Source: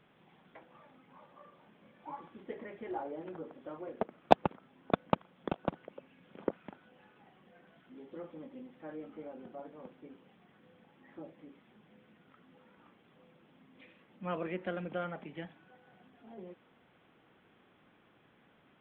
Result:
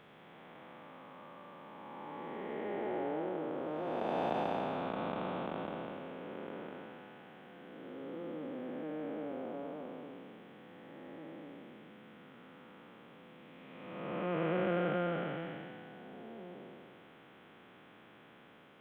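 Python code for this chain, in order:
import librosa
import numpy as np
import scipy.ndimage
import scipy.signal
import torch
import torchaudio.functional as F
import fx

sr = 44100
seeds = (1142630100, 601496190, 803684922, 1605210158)

y = fx.spec_blur(x, sr, span_ms=614.0)
y = fx.low_shelf(y, sr, hz=100.0, db=-9.5)
y = F.gain(torch.from_numpy(y), 10.0).numpy()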